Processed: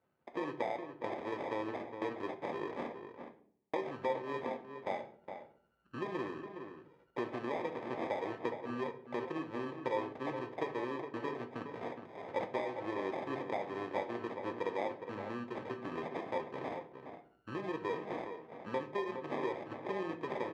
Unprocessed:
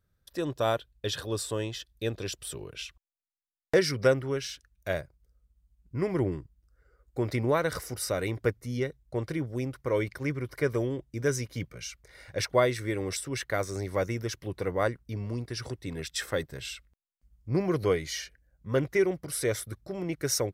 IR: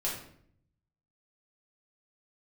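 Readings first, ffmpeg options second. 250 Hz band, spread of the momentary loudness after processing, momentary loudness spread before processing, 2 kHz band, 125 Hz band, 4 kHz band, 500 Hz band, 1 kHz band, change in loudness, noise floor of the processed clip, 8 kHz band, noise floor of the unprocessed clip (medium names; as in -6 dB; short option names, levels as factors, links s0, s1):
-7.5 dB, 9 LU, 13 LU, -8.5 dB, -18.5 dB, -16.0 dB, -8.5 dB, -1.0 dB, -9.0 dB, -70 dBFS, under -30 dB, -77 dBFS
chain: -filter_complex "[0:a]acompressor=threshold=0.0126:ratio=10,flanger=delay=0.1:depth=6.8:regen=-80:speed=1.3:shape=sinusoidal,acrusher=samples=31:mix=1:aa=0.000001,highpass=310,lowpass=2100,asplit=2[s0][s1];[s1]adelay=414,volume=0.398,highshelf=f=4000:g=-9.32[s2];[s0][s2]amix=inputs=2:normalize=0,asplit=2[s3][s4];[1:a]atrim=start_sample=2205,asetrate=57330,aresample=44100[s5];[s4][s5]afir=irnorm=-1:irlink=0,volume=0.473[s6];[s3][s6]amix=inputs=2:normalize=0,volume=2.37"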